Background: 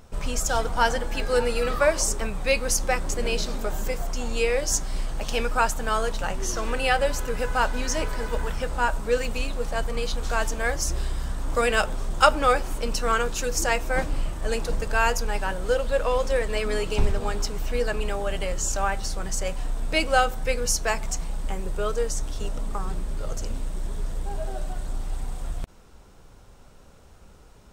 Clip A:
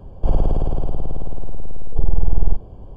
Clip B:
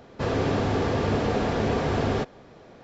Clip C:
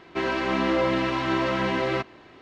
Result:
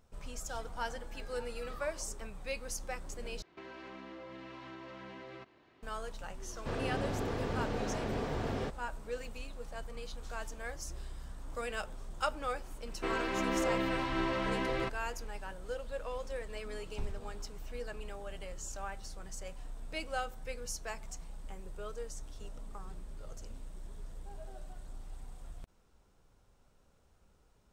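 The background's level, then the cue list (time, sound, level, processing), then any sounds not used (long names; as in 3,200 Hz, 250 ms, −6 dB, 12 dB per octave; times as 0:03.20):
background −16.5 dB
0:03.42: overwrite with C −15 dB + downward compressor, threshold −30 dBFS
0:06.46: mix in B −11.5 dB
0:12.87: mix in C −9 dB
not used: A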